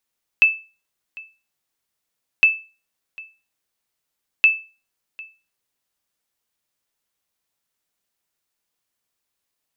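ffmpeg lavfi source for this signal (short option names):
-f lavfi -i "aevalsrc='0.531*(sin(2*PI*2630*mod(t,2.01))*exp(-6.91*mod(t,2.01)/0.32)+0.0708*sin(2*PI*2630*max(mod(t,2.01)-0.75,0))*exp(-6.91*max(mod(t,2.01)-0.75,0)/0.32))':d=6.03:s=44100"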